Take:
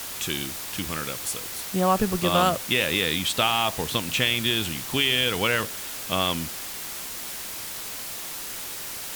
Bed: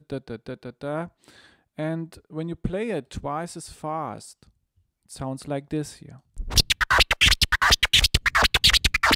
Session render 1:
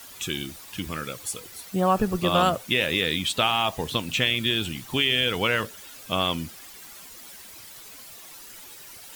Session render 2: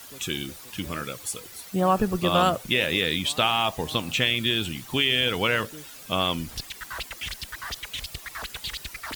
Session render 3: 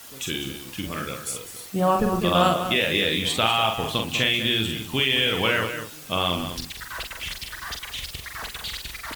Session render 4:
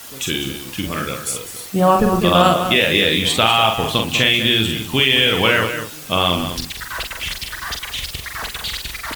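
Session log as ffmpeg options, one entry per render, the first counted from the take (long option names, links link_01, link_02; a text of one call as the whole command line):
ffmpeg -i in.wav -af "afftdn=noise_reduction=12:noise_floor=-35" out.wav
ffmpeg -i in.wav -i bed.wav -filter_complex "[1:a]volume=-17dB[link_01];[0:a][link_01]amix=inputs=2:normalize=0" out.wav
ffmpeg -i in.wav -filter_complex "[0:a]asplit=2[link_01][link_02];[link_02]adelay=45,volume=-4.5dB[link_03];[link_01][link_03]amix=inputs=2:normalize=0,asplit=2[link_04][link_05];[link_05]adelay=198.3,volume=-9dB,highshelf=frequency=4000:gain=-4.46[link_06];[link_04][link_06]amix=inputs=2:normalize=0" out.wav
ffmpeg -i in.wav -af "volume=7dB,alimiter=limit=-1dB:level=0:latency=1" out.wav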